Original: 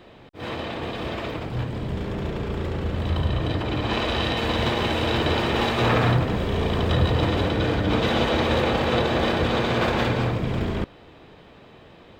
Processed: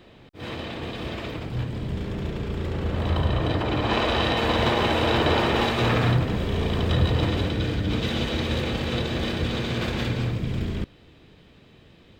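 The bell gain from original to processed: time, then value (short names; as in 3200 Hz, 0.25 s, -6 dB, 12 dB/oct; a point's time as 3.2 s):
bell 840 Hz 2.3 oct
2.57 s -5.5 dB
3.04 s +3 dB
5.43 s +3 dB
5.93 s -4.5 dB
7.23 s -4.5 dB
7.73 s -11.5 dB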